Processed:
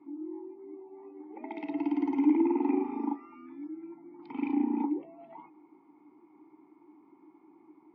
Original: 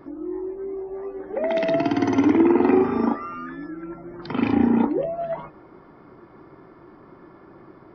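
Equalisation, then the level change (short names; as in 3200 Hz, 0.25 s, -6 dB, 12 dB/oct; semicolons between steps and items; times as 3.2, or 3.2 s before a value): vowel filter u; low shelf 210 Hz -10 dB; 0.0 dB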